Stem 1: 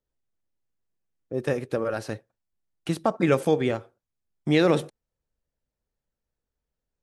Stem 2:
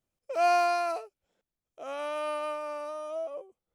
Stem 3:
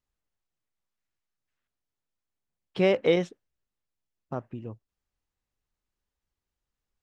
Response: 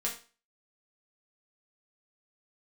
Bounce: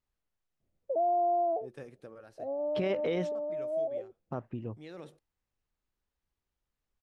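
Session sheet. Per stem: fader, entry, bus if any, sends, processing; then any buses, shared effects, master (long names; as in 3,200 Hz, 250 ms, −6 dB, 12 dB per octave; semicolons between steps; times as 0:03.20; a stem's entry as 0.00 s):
−20.0 dB, 0.30 s, no send, pitch vibrato 0.51 Hz 36 cents; automatic ducking −9 dB, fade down 0.85 s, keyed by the third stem
+2.5 dB, 0.60 s, no send, Butterworth low-pass 760 Hz 48 dB per octave; low-shelf EQ 260 Hz +6 dB
0.0 dB, 0.00 s, no send, high-shelf EQ 5,200 Hz −7.5 dB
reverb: not used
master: brickwall limiter −23 dBFS, peak gain reduction 11.5 dB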